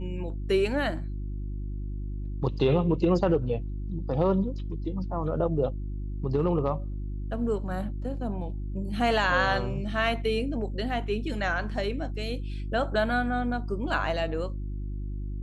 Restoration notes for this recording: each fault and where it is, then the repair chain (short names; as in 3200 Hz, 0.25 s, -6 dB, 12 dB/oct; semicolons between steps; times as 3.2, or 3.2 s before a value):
hum 50 Hz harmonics 7 -33 dBFS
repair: de-hum 50 Hz, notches 7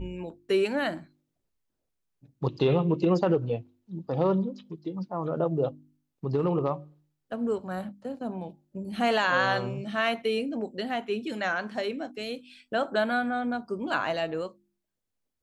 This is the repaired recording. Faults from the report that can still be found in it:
none